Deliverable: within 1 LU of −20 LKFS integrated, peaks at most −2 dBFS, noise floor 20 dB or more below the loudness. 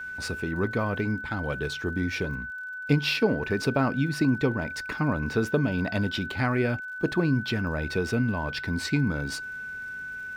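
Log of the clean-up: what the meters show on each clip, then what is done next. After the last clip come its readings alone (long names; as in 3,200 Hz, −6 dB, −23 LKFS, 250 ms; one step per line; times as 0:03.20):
crackle rate 56 per second; interfering tone 1,500 Hz; level of the tone −34 dBFS; integrated loudness −27.5 LKFS; sample peak −10.0 dBFS; target loudness −20.0 LKFS
→ click removal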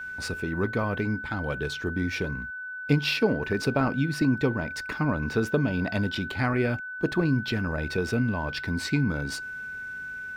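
crackle rate 1.5 per second; interfering tone 1,500 Hz; level of the tone −34 dBFS
→ notch filter 1,500 Hz, Q 30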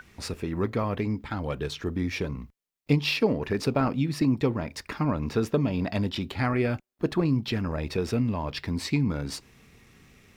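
interfering tone none found; integrated loudness −28.0 LKFS; sample peak −10.5 dBFS; target loudness −20.0 LKFS
→ level +8 dB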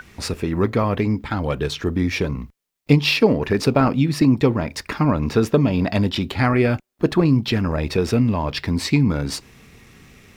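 integrated loudness −20.0 LKFS; sample peak −2.5 dBFS; background noise floor −61 dBFS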